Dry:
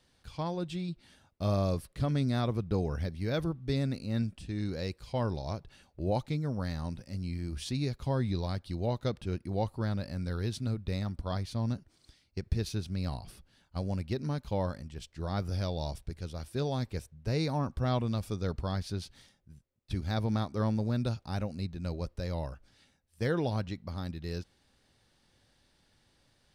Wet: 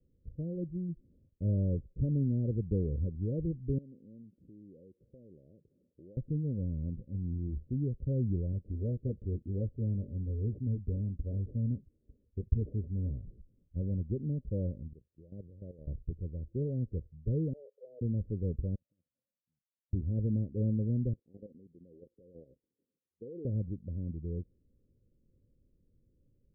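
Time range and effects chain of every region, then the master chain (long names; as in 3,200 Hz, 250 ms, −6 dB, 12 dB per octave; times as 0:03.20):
0:03.78–0:06.17: high-pass filter 220 Hz + downward compressor 3 to 1, threshold −52 dBFS
0:08.52–0:13.25: sample-and-hold swept by an LFO 17×, swing 60% 1.4 Hz + notch comb filter 170 Hz
0:14.93–0:15.87: high-pass filter 91 Hz + low-shelf EQ 350 Hz −10 dB + output level in coarse steps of 13 dB
0:17.53–0:18.01: Chebyshev high-pass filter 410 Hz, order 10 + saturating transformer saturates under 2,500 Hz
0:18.75–0:19.93: compressor whose output falls as the input rises −37 dBFS, ratio −0.5 + high-pass filter 1,200 Hz + phaser with its sweep stopped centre 2,000 Hz, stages 8
0:21.13–0:23.45: high-pass filter 370 Hz + output level in coarse steps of 13 dB + notch filter 590 Hz, Q 6.6
whole clip: Butterworth low-pass 540 Hz 72 dB per octave; spectral tilt −2 dB per octave; level −5.5 dB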